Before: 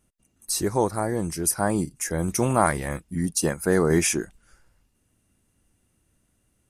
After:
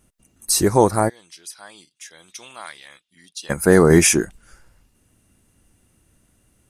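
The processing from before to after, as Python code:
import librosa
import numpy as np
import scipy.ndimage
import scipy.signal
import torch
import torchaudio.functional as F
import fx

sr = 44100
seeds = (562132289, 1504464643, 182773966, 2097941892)

y = fx.bandpass_q(x, sr, hz=3500.0, q=4.9, at=(1.08, 3.49), fade=0.02)
y = y * 10.0 ** (8.0 / 20.0)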